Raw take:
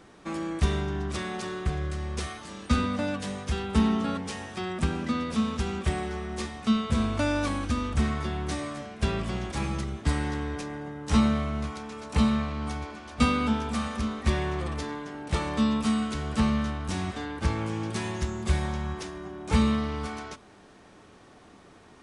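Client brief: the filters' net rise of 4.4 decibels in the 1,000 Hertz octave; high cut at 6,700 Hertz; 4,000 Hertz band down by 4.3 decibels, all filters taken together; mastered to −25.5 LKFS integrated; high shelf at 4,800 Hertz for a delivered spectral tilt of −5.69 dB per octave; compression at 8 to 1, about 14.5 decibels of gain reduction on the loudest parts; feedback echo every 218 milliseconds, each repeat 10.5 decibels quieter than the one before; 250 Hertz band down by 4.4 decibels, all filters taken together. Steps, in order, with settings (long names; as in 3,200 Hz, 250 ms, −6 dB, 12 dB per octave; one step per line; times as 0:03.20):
low-pass filter 6,700 Hz
parametric band 250 Hz −5.5 dB
parametric band 1,000 Hz +6 dB
parametric band 4,000 Hz −8 dB
high-shelf EQ 4,800 Hz +5.5 dB
downward compressor 8 to 1, threshold −34 dBFS
repeating echo 218 ms, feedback 30%, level −10.5 dB
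level +12.5 dB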